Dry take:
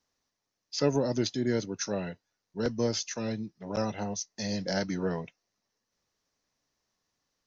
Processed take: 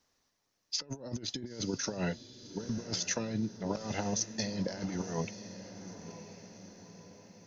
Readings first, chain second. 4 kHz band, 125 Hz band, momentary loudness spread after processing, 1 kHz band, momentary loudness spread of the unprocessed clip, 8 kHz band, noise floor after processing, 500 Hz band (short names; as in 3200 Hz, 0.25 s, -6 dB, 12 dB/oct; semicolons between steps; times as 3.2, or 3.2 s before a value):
-1.0 dB, -3.5 dB, 18 LU, -4.0 dB, 10 LU, n/a, -79 dBFS, -8.0 dB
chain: negative-ratio compressor -35 dBFS, ratio -0.5; on a send: diffused feedback echo 0.984 s, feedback 52%, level -12 dB